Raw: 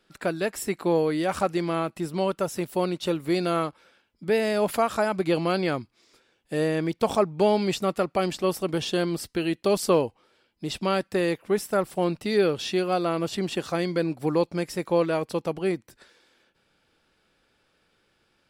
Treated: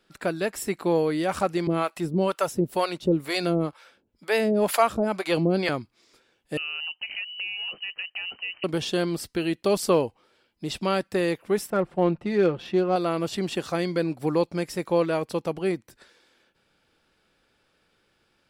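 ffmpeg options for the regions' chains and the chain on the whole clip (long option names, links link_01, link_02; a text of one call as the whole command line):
ffmpeg -i in.wav -filter_complex "[0:a]asettb=1/sr,asplit=3[link_01][link_02][link_03];[link_01]atrim=end=1.674[link_04];[link_02]atrim=start=1.67:end=5.69,asetpts=PTS-STARTPTS,afade=type=in:duration=0.004:curve=qsin,afade=type=out:start_time=4.016:duration=0.004:curve=qsin,acontrast=83,acrossover=split=530[link_05][link_06];[link_05]aeval=exprs='val(0)*(1-1/2+1/2*cos(2*PI*2.1*n/s))':channel_layout=same[link_07];[link_06]aeval=exprs='val(0)*(1-1/2-1/2*cos(2*PI*2.1*n/s))':channel_layout=same[link_08];[link_07][link_08]amix=inputs=2:normalize=0[link_09];[link_03]atrim=start=5.686[link_10];[link_04][link_09]acrossfade=duration=0.004:curve1=hsin:curve2=qsin[link_11];[link_11][link_10]acrossfade=duration=0.004:curve1=qsin:curve2=hsin,asettb=1/sr,asplit=3[link_12][link_13][link_14];[link_12]atrim=end=6.574[link_15];[link_13]atrim=start=6.57:end=8.64,asetpts=PTS-STARTPTS,afade=type=in:duration=0.004:curve=qsin,afade=type=out:start_time=2.066:duration=0.004:curve=qsin,equalizer=frequency=1300:width=0.32:gain=-5.5,acompressor=threshold=-29dB:ratio=6:attack=3.2:release=140:knee=1:detection=peak,lowpass=frequency=2600:width_type=q:width=0.5098,lowpass=frequency=2600:width_type=q:width=0.6013,lowpass=frequency=2600:width_type=q:width=0.9,lowpass=frequency=2600:width_type=q:width=2.563,afreqshift=-3100[link_16];[link_14]atrim=start=8.636[link_17];[link_15][link_16]acrossfade=duration=0.004:curve1=hsin:curve2=qsin[link_18];[link_18][link_17]acrossfade=duration=0.004:curve1=qsin:curve2=hsin,asettb=1/sr,asplit=3[link_19][link_20][link_21];[link_19]atrim=end=11.704[link_22];[link_20]atrim=start=11.7:end=12.96,asetpts=PTS-STARTPTS,afade=type=in:duration=0.004:curve=qsin,afade=type=out:start_time=1.256:duration=0.004:curve=qsin,equalizer=frequency=5100:width=0.6:gain=-7.5,aecho=1:1:5.7:0.44,atrim=end_sample=55566,adynamicsmooth=sensitivity=3:basefreq=2900[link_23];[link_21]atrim=start=12.956[link_24];[link_22][link_23]acrossfade=duration=0.004:curve1=hsin:curve2=qsin[link_25];[link_25][link_24]acrossfade=duration=0.004:curve1=qsin:curve2=hsin" out.wav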